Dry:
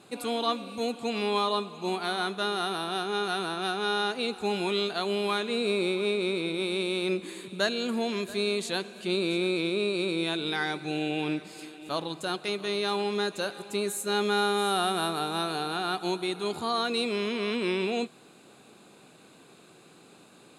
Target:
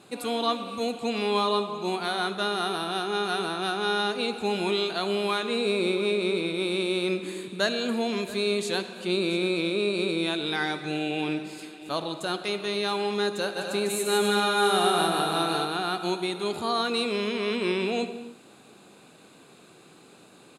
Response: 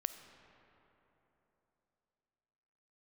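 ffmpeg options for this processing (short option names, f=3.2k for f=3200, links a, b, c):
-filter_complex "[0:a]asplit=3[a][b][c];[a]afade=t=out:st=13.55:d=0.02[d];[b]aecho=1:1:150|255|328.5|380|416:0.631|0.398|0.251|0.158|0.1,afade=t=in:st=13.55:d=0.02,afade=t=out:st=15.64:d=0.02[e];[c]afade=t=in:st=15.64:d=0.02[f];[d][e][f]amix=inputs=3:normalize=0[g];[1:a]atrim=start_sample=2205,afade=t=out:st=0.35:d=0.01,atrim=end_sample=15876[h];[g][h]afir=irnorm=-1:irlink=0,volume=2.5dB"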